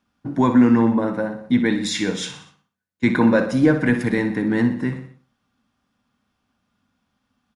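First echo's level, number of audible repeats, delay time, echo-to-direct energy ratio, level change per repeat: −11.0 dB, 4, 61 ms, −9.5 dB, −6.0 dB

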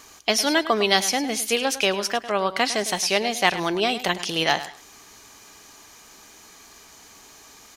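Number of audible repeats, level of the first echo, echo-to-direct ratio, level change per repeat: 2, −14.0 dB, −14.0 dB, −13.5 dB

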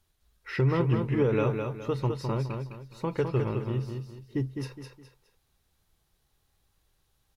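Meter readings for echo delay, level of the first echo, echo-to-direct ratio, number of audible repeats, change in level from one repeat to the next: 208 ms, −5.5 dB, −5.0 dB, 3, −9.5 dB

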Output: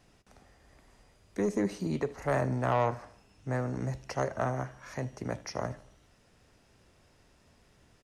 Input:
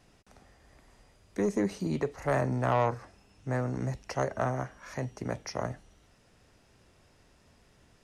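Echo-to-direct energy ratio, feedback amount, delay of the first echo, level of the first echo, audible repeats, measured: −18.0 dB, 49%, 77 ms, −19.0 dB, 3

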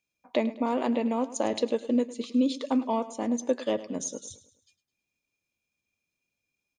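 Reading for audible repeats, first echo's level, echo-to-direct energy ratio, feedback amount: 3, −16.0 dB, −15.0 dB, 45%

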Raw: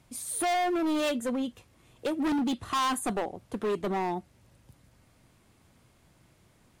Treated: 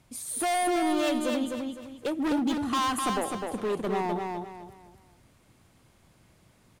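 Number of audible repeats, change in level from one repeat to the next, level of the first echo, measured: 4, −10.0 dB, −4.0 dB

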